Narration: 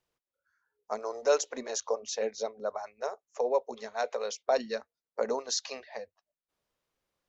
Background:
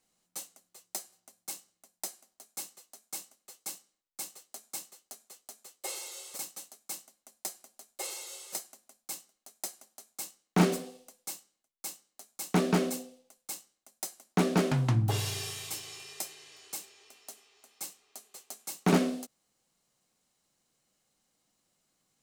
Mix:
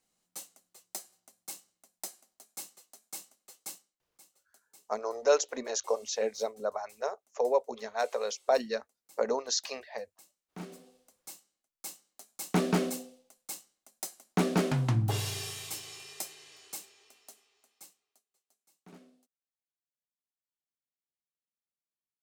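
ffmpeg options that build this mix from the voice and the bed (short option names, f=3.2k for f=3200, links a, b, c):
-filter_complex "[0:a]adelay=4000,volume=1dB[a];[1:a]volume=16dB,afade=t=out:st=3.71:d=0.31:silence=0.141254,afade=t=in:st=10.68:d=1.43:silence=0.11885,afade=t=out:st=16.55:d=1.7:silence=0.0354813[b];[a][b]amix=inputs=2:normalize=0"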